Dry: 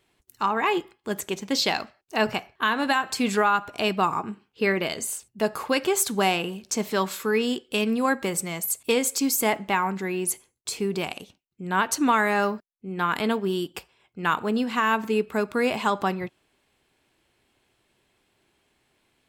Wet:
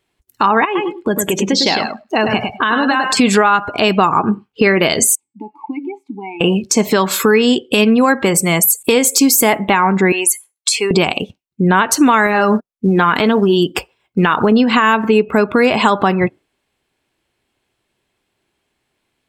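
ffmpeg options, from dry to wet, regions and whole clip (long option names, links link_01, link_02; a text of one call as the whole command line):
ffmpeg -i in.wav -filter_complex "[0:a]asettb=1/sr,asplit=3[link_01][link_02][link_03];[link_01]atrim=end=0.654[link_04];[link_02]atrim=start=0.65:end=3.17,asetpts=PTS-STARTPTS,afade=type=in:duration=0.004:curve=qsin,afade=type=out:start_time=2.516:duration=0.004:curve=qsin,acompressor=threshold=-35dB:ratio=4:attack=3.2:release=140:knee=1:detection=peak,aecho=1:1:104|208|312:0.562|0.135|0.0324,atrim=end_sample=111132[link_05];[link_03]atrim=start=3.166[link_06];[link_04][link_05]acrossfade=duration=0.004:curve1=hsin:curve2=qsin[link_07];[link_07][link_06]acrossfade=duration=0.004:curve1=qsin:curve2=hsin,asettb=1/sr,asplit=3[link_08][link_09][link_10];[link_08]atrim=end=5.154[link_11];[link_09]atrim=start=5.15:end=6.41,asetpts=PTS-STARTPTS,afade=type=in:duration=0.004:curve=qsin,afade=type=out:start_time=1.256:duration=0.004:curve=qsin,bandreject=frequency=277.8:width_type=h:width=4,bandreject=frequency=555.6:width_type=h:width=4,bandreject=frequency=833.4:width_type=h:width=4,bandreject=frequency=1111.2:width_type=h:width=4,bandreject=frequency=1389:width_type=h:width=4,bandreject=frequency=1666.8:width_type=h:width=4,bandreject=frequency=1944.6:width_type=h:width=4,bandreject=frequency=2222.4:width_type=h:width=4,bandreject=frequency=2500.2:width_type=h:width=4,bandreject=frequency=2778:width_type=h:width=4,bandreject=frequency=3055.8:width_type=h:width=4,bandreject=frequency=3333.6:width_type=h:width=4,bandreject=frequency=3611.4:width_type=h:width=4,bandreject=frequency=3889.2:width_type=h:width=4,bandreject=frequency=4167:width_type=h:width=4,bandreject=frequency=4444.8:width_type=h:width=4,bandreject=frequency=4722.6:width_type=h:width=4,bandreject=frequency=5000.4:width_type=h:width=4,bandreject=frequency=5278.2:width_type=h:width=4,bandreject=frequency=5556:width_type=h:width=4,bandreject=frequency=5833.8:width_type=h:width=4,bandreject=frequency=6111.6:width_type=h:width=4,bandreject=frequency=6389.4:width_type=h:width=4,bandreject=frequency=6667.2:width_type=h:width=4,bandreject=frequency=6945:width_type=h:width=4,bandreject=frequency=7222.8:width_type=h:width=4,bandreject=frequency=7500.6:width_type=h:width=4,bandreject=frequency=7778.4:width_type=h:width=4,bandreject=frequency=8056.2:width_type=h:width=4,bandreject=frequency=8334:width_type=h:width=4,bandreject=frequency=8611.8:width_type=h:width=4,acompressor=threshold=-41dB:ratio=2:attack=3.2:release=140:knee=1:detection=peak,asplit=3[link_12][link_13][link_14];[link_12]bandpass=frequency=300:width_type=q:width=8,volume=0dB[link_15];[link_13]bandpass=frequency=870:width_type=q:width=8,volume=-6dB[link_16];[link_14]bandpass=frequency=2240:width_type=q:width=8,volume=-9dB[link_17];[link_15][link_16][link_17]amix=inputs=3:normalize=0[link_18];[link_10]atrim=start=6.406[link_19];[link_11][link_18]acrossfade=duration=0.004:curve1=hsin:curve2=qsin[link_20];[link_20][link_19]acrossfade=duration=0.004:curve1=qsin:curve2=hsin,asettb=1/sr,asplit=3[link_21][link_22][link_23];[link_21]atrim=end=10.124[link_24];[link_22]atrim=start=10.12:end=10.91,asetpts=PTS-STARTPTS,afade=type=in:duration=0.004:curve=qsin,afade=type=out:start_time=0.786:duration=0.004:curve=qsin,highpass=790,acompressor=threshold=-30dB:ratio=2.5:attack=3.2:release=140:knee=1:detection=peak[link_25];[link_23]atrim=start=10.906[link_26];[link_24][link_25]acrossfade=duration=0.004:curve1=hsin:curve2=qsin[link_27];[link_27][link_26]acrossfade=duration=0.004:curve1=qsin:curve2=hsin,asettb=1/sr,asplit=3[link_28][link_29][link_30];[link_28]atrim=end=12.264[link_31];[link_29]atrim=start=12.26:end=14.52,asetpts=PTS-STARTPTS,afade=type=in:duration=0.004:curve=qsin,afade=type=out:start_time=2.256:duration=0.004:curve=qsin,acompressor=threshold=-27dB:ratio=3:attack=3.2:release=140:knee=1:detection=peak,aphaser=in_gain=1:out_gain=1:delay=4.9:decay=0.24:speed=1.8:type=sinusoidal,acrusher=bits=5:mode=log:mix=0:aa=0.000001[link_32];[link_30]atrim=start=14.516[link_33];[link_31][link_32]acrossfade=duration=0.004:curve1=hsin:curve2=qsin[link_34];[link_34][link_33]acrossfade=duration=0.004:curve1=qsin:curve2=hsin,afftdn=noise_reduction=24:noise_floor=-44,acompressor=threshold=-31dB:ratio=6,alimiter=level_in=23.5dB:limit=-1dB:release=50:level=0:latency=1,volume=-1dB" out.wav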